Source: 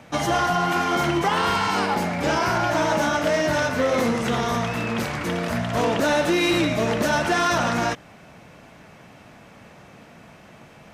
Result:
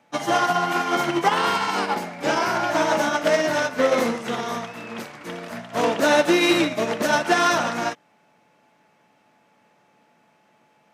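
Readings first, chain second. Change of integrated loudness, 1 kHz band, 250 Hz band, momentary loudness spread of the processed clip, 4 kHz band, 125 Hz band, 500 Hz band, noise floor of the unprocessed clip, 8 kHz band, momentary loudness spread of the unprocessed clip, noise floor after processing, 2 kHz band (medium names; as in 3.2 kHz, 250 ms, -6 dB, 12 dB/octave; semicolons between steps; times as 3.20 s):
+0.5 dB, +0.5 dB, -1.0 dB, 15 LU, +0.5 dB, -8.5 dB, +1.0 dB, -48 dBFS, +0.5 dB, 5 LU, -61 dBFS, +0.5 dB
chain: high-pass 210 Hz 12 dB/octave; whistle 860 Hz -50 dBFS; upward expansion 2.5:1, over -31 dBFS; trim +5 dB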